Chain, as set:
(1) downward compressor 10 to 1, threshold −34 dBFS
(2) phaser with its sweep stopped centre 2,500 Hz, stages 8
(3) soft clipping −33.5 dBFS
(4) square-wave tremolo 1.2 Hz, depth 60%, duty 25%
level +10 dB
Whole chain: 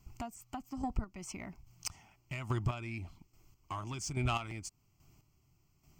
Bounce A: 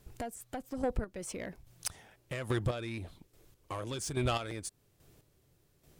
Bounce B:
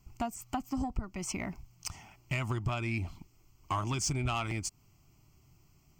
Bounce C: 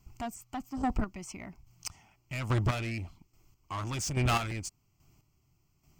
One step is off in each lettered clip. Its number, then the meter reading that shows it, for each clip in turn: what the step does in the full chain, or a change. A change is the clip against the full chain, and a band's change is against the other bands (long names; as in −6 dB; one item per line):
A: 2, change in crest factor −2.0 dB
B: 4, change in crest factor −4.0 dB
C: 1, average gain reduction 8.5 dB